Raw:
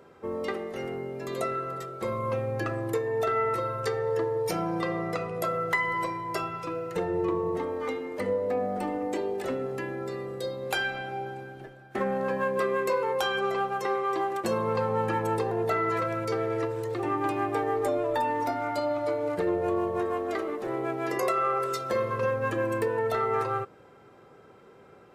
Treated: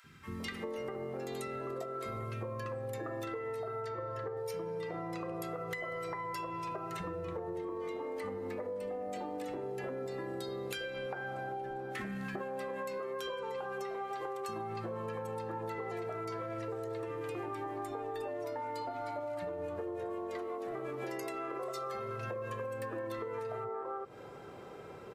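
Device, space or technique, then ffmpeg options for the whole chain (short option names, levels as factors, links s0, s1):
serial compression, peaks first: -filter_complex "[0:a]asettb=1/sr,asplit=3[s0][s1][s2];[s0]atrim=end=3.824[s3];[s1]atrim=start=3.82:end=4.37,asetpts=PTS-STARTPTS,afade=t=in:d=0.004:c=qsin,afade=t=out:st=0.546:d=0.004:c=qsin,highshelf=f=5400:g=-11.5[s4];[s2]atrim=start=4.366[s5];[s3][s4]acrossfade=d=0.004:c1=hsin:c2=qsin[s6];[s6][s5]acrossfade=d=0.004:c1=qsin:c2=hsin,acrossover=split=230|1500[s7][s8][s9];[s7]adelay=40[s10];[s8]adelay=400[s11];[s10][s11][s9]amix=inputs=3:normalize=0,acompressor=threshold=0.0141:ratio=6,acompressor=threshold=0.00631:ratio=3,volume=2"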